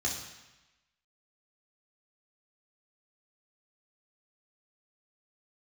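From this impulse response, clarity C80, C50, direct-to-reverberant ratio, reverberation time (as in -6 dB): 7.0 dB, 4.5 dB, -3.0 dB, 1.0 s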